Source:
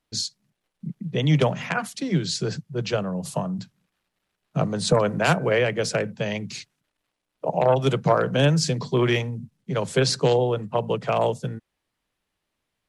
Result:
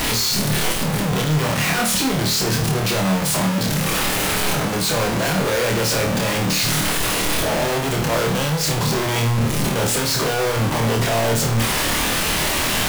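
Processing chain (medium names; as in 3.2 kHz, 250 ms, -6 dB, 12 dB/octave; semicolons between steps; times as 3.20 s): one-bit comparator; flutter echo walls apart 4.5 m, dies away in 0.39 s; trim +3 dB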